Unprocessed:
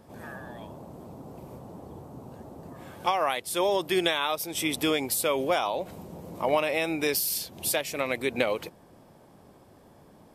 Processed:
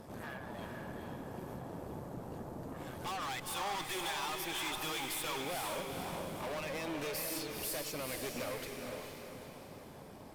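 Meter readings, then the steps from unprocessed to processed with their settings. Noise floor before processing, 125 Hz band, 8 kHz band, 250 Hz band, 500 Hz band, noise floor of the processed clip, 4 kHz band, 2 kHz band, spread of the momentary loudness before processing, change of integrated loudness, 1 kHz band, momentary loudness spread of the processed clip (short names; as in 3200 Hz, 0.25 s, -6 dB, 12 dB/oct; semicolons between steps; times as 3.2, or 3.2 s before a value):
-55 dBFS, -4.0 dB, -9.0 dB, -10.0 dB, -13.0 dB, -51 dBFS, -8.5 dB, -9.0 dB, 19 LU, -12.5 dB, -9.5 dB, 9 LU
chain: spectral gain 3.06–5.4, 740–3700 Hz +11 dB; reverb removal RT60 0.6 s; compressor 1.5:1, threshold -51 dBFS, peak gain reduction 14 dB; tube stage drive 45 dB, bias 0.8; on a send: diffused feedback echo 0.463 s, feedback 46%, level -3 dB; on the sum: gain +7 dB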